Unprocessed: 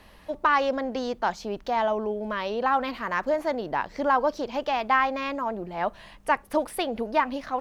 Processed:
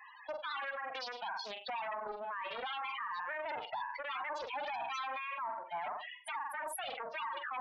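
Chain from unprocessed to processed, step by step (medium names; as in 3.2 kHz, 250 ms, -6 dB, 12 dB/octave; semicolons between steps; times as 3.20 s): gate with hold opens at -45 dBFS; reverb removal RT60 0.66 s; flutter echo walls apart 7.8 m, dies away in 0.41 s; wavefolder -22.5 dBFS; high-pass 860 Hz 24 dB/octave; loudest bins only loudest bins 16; compression, threshold -37 dBFS, peak gain reduction 8.5 dB; peak limiter -39.5 dBFS, peak gain reduction 11 dB; loudspeaker Doppler distortion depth 0.22 ms; trim +7.5 dB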